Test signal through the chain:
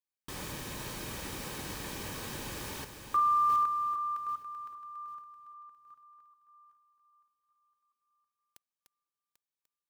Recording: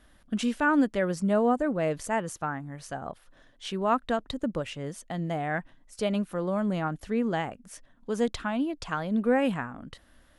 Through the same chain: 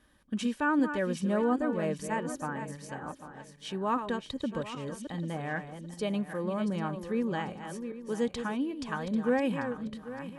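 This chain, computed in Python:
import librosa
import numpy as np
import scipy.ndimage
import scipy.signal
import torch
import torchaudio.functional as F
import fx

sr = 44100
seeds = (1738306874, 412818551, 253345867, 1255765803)

y = fx.reverse_delay_fb(x, sr, ms=396, feedback_pct=51, wet_db=-8.5)
y = fx.notch_comb(y, sr, f0_hz=690.0)
y = y * librosa.db_to_amplitude(-3.0)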